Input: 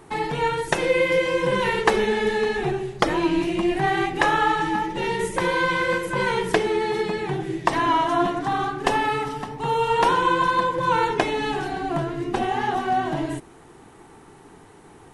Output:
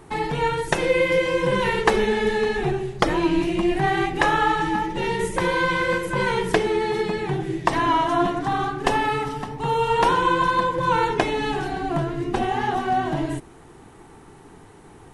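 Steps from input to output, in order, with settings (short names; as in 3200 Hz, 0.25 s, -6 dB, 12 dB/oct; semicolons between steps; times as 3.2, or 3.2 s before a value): low shelf 130 Hz +6.5 dB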